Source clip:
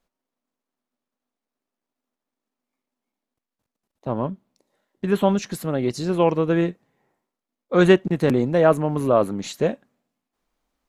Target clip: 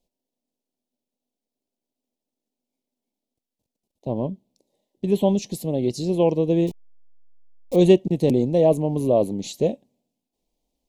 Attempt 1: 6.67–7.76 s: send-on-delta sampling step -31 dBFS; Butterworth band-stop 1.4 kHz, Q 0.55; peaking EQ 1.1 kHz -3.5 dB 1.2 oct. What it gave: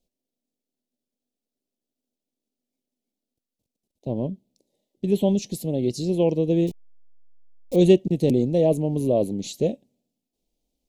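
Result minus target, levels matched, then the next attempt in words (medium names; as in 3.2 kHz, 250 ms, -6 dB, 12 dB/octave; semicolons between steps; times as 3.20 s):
1 kHz band -4.5 dB
6.67–7.76 s: send-on-delta sampling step -31 dBFS; Butterworth band-stop 1.4 kHz, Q 0.55; peaking EQ 1.1 kHz +6.5 dB 1.2 oct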